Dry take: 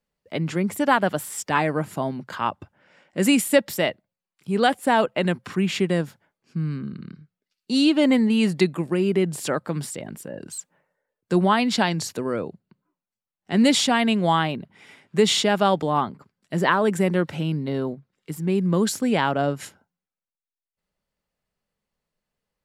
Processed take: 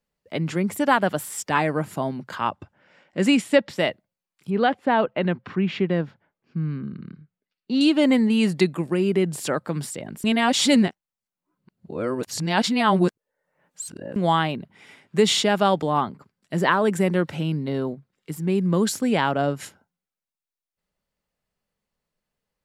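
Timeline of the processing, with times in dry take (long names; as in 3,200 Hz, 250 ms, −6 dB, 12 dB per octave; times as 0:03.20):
0:02.49–0:03.77: low-pass filter 9,500 Hz → 4,100 Hz
0:04.50–0:07.81: high-frequency loss of the air 250 metres
0:10.24–0:14.16: reverse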